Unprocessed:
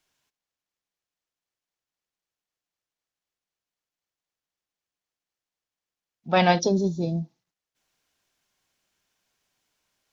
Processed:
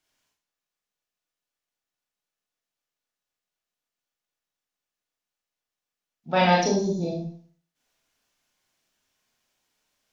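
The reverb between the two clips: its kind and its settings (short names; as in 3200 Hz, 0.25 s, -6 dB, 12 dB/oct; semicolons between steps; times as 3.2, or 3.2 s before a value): Schroeder reverb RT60 0.47 s, combs from 26 ms, DRR -3 dB; gain -4 dB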